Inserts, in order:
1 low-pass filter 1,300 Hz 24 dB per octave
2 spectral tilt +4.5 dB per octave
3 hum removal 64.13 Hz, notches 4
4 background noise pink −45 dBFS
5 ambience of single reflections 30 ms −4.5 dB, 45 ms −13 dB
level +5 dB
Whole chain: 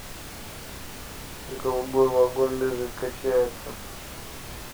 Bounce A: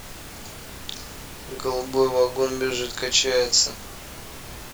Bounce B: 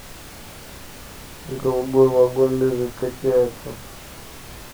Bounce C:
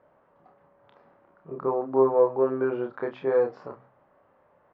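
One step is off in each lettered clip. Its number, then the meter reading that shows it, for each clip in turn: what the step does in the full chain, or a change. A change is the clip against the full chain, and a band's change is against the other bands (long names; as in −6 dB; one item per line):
1, 4 kHz band +16.0 dB
2, 125 Hz band +8.5 dB
4, 125 Hz band −4.5 dB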